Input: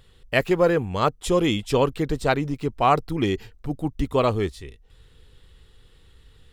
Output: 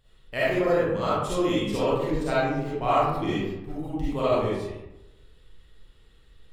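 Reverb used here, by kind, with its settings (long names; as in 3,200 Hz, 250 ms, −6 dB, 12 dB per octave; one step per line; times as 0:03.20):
comb and all-pass reverb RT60 0.97 s, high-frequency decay 0.5×, pre-delay 15 ms, DRR −10 dB
level −13 dB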